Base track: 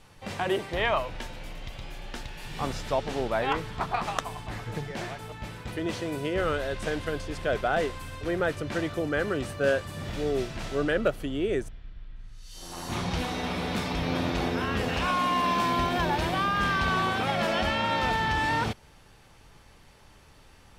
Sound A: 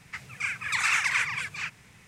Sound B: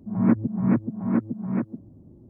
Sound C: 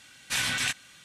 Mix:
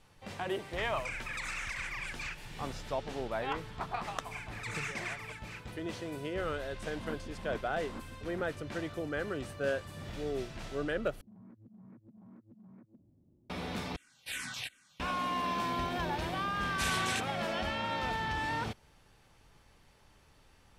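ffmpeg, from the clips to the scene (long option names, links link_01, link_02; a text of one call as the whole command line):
ffmpeg -i bed.wav -i cue0.wav -i cue1.wav -i cue2.wav -filter_complex "[1:a]asplit=2[link_01][link_02];[2:a]asplit=2[link_03][link_04];[3:a]asplit=2[link_05][link_06];[0:a]volume=-8dB[link_07];[link_01]acompressor=threshold=-35dB:ratio=6:attack=3.2:release=140:knee=1:detection=peak[link_08];[link_03]bandpass=frequency=1100:width_type=q:width=0.91:csg=0[link_09];[link_04]acompressor=threshold=-34dB:ratio=6:attack=0.12:release=75:knee=1:detection=rms[link_10];[link_05]asplit=2[link_11][link_12];[link_12]afreqshift=-2.7[link_13];[link_11][link_13]amix=inputs=2:normalize=1[link_14];[link_07]asplit=3[link_15][link_16][link_17];[link_15]atrim=end=11.214[link_18];[link_10]atrim=end=2.29,asetpts=PTS-STARTPTS,volume=-17.5dB[link_19];[link_16]atrim=start=13.496:end=13.964[link_20];[link_14]atrim=end=1.04,asetpts=PTS-STARTPTS,volume=-9dB[link_21];[link_17]atrim=start=14.996[link_22];[link_08]atrim=end=2.07,asetpts=PTS-STARTPTS,volume=-1.5dB,afade=type=in:duration=0.004:curve=hsin,afade=type=out:start_time=2.066:duration=0.004:curve=hsin,adelay=650[link_23];[link_02]atrim=end=2.07,asetpts=PTS-STARTPTS,volume=-14.5dB,afade=type=in:duration=0.004:curve=hsin,afade=type=out:start_time=2.066:duration=0.004:curve=hsin,adelay=3910[link_24];[link_09]atrim=end=2.29,asetpts=PTS-STARTPTS,volume=-12.5dB,afade=type=in:duration=0.004:curve=hsin,afade=type=out:start_time=2.286:duration=0.004:curve=hsin,adelay=6810[link_25];[link_06]atrim=end=1.04,asetpts=PTS-STARTPTS,volume=-7.5dB,afade=type=in:duration=0.004:curve=hsin,afade=type=out:start_time=1.036:duration=0.004:curve=hsin,adelay=16480[link_26];[link_18][link_19]acrossfade=duration=0.004:curve1=hsin:curve2=hsin[link_27];[link_27][link_20]acrossfade=duration=0.004:curve1=hsin:curve2=hsin[link_28];[link_28][link_21]acrossfade=duration=0.004:curve1=hsin:curve2=hsin[link_29];[link_29][link_22]acrossfade=duration=0.004:curve1=hsin:curve2=hsin[link_30];[link_30][link_23][link_24][link_25][link_26]amix=inputs=5:normalize=0" out.wav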